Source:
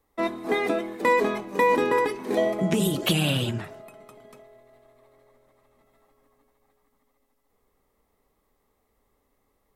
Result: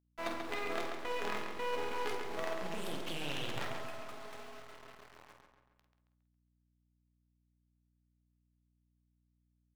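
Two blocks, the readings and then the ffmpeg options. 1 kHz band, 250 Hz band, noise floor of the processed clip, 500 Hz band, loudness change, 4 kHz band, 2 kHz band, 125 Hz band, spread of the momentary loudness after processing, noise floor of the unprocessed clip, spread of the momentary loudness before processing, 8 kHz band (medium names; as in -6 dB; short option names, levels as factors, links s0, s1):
-13.0 dB, -18.5 dB, -77 dBFS, -15.5 dB, -15.5 dB, -12.0 dB, -12.0 dB, -20.5 dB, 16 LU, -72 dBFS, 8 LU, -14.0 dB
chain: -filter_complex "[0:a]areverse,acompressor=threshold=0.0158:ratio=12,areverse,acrusher=bits=6:dc=4:mix=0:aa=0.000001,flanger=delay=6.6:depth=8.4:regen=78:speed=1.1:shape=triangular,acrossover=split=850[s0][s1];[s0]acrusher=bits=3:mode=log:mix=0:aa=0.000001[s2];[s2][s1]amix=inputs=2:normalize=0,asplit=2[s3][s4];[s4]adelay=137,lowpass=f=4400:p=1,volume=0.501,asplit=2[s5][s6];[s6]adelay=137,lowpass=f=4400:p=1,volume=0.51,asplit=2[s7][s8];[s8]adelay=137,lowpass=f=4400:p=1,volume=0.51,asplit=2[s9][s10];[s10]adelay=137,lowpass=f=4400:p=1,volume=0.51,asplit=2[s11][s12];[s12]adelay=137,lowpass=f=4400:p=1,volume=0.51,asplit=2[s13][s14];[s14]adelay=137,lowpass=f=4400:p=1,volume=0.51[s15];[s3][s5][s7][s9][s11][s13][s15]amix=inputs=7:normalize=0,aeval=exprs='val(0)+0.000126*(sin(2*PI*60*n/s)+sin(2*PI*2*60*n/s)/2+sin(2*PI*3*60*n/s)/3+sin(2*PI*4*60*n/s)/4+sin(2*PI*5*60*n/s)/5)':c=same,asplit=2[s16][s17];[s17]highpass=f=720:p=1,volume=2.82,asoftclip=type=tanh:threshold=0.0398[s18];[s16][s18]amix=inputs=2:normalize=0,lowpass=f=3000:p=1,volume=0.501,asplit=2[s19][s20];[s20]adelay=49,volume=0.398[s21];[s19][s21]amix=inputs=2:normalize=0,volume=1.88"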